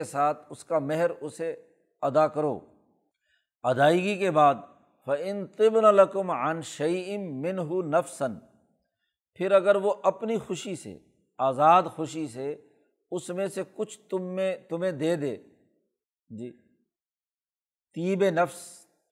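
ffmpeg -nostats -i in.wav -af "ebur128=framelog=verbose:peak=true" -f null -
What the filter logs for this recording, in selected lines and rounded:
Integrated loudness:
  I:         -26.3 LUFS
  Threshold: -37.3 LUFS
Loudness range:
  LRA:         8.9 LU
  Threshold: -47.6 LUFS
  LRA low:   -33.1 LUFS
  LRA high:  -24.2 LUFS
True peak:
  Peak:       -7.1 dBFS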